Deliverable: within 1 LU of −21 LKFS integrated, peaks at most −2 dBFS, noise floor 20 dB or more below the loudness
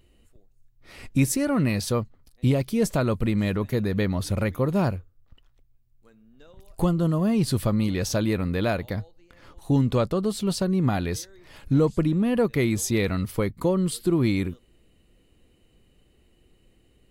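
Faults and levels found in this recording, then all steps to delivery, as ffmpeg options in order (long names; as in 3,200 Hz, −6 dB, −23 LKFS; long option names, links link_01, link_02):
integrated loudness −24.5 LKFS; sample peak −9.5 dBFS; target loudness −21.0 LKFS
→ -af "volume=3.5dB"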